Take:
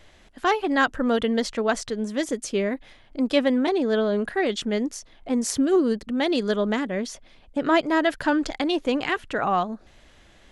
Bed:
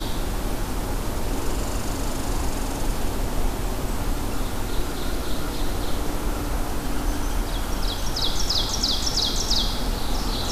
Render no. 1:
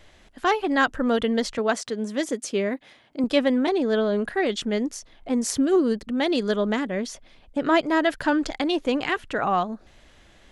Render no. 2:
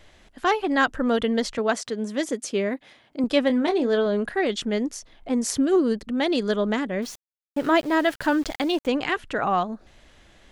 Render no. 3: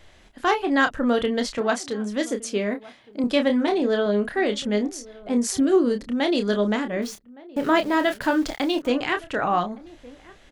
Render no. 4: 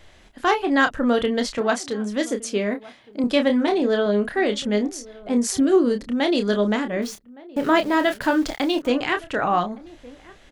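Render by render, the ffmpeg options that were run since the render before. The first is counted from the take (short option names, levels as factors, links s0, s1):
-filter_complex "[0:a]asettb=1/sr,asplit=3[s0][s1][s2];[s0]atrim=end=1.584[s3];[s1]atrim=start=1.58:end=3.24,asetpts=PTS-STARTPTS,afade=t=in:d=0.004:c=qsin,afade=t=out:st=1.656:d=0.004:c=qsin,highpass=150[s4];[s2]atrim=start=3.236[s5];[s3][s4]acrossfade=d=0.004:c1=hsin:c2=qsin[s6];[s6][s5]acrossfade=d=0.004:c1=qsin:c2=hsin"
-filter_complex "[0:a]asettb=1/sr,asplit=3[s0][s1][s2];[s0]atrim=end=3.474[s3];[s1]atrim=start=3.47:end=4.06,asetpts=PTS-STARTPTS,afade=t=in:d=0.004:c=qsin,afade=t=out:st=0.586:d=0.004:c=qsin,asplit=2[s4][s5];[s5]adelay=25,volume=0.316[s6];[s4][s6]amix=inputs=2:normalize=0,atrim=end_sample=26019[s7];[s2]atrim=start=4.056[s8];[s3][s7]acrossfade=d=0.004:c1=hsin:c2=qsin[s9];[s9][s8]acrossfade=d=0.004:c1=qsin:c2=hsin,asettb=1/sr,asplit=3[s10][s11][s12];[s10]atrim=end=7.024[s13];[s11]atrim=start=7.02:end=8.87,asetpts=PTS-STARTPTS,afade=t=in:d=0.004:c=qsin,afade=t=out:st=1.846:d=0.004:c=qsin,aeval=exprs='val(0)*gte(abs(val(0)),0.0126)':c=same[s14];[s12]atrim=start=8.866[s15];[s13][s14]acrossfade=d=0.004:c1=hsin:c2=qsin[s16];[s16][s15]acrossfade=d=0.004:c1=qsin:c2=hsin"
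-filter_complex "[0:a]asplit=2[s0][s1];[s1]adelay=29,volume=0.422[s2];[s0][s2]amix=inputs=2:normalize=0,asplit=2[s3][s4];[s4]adelay=1166,volume=0.0891,highshelf=f=4000:g=-26.2[s5];[s3][s5]amix=inputs=2:normalize=0"
-af "volume=1.19"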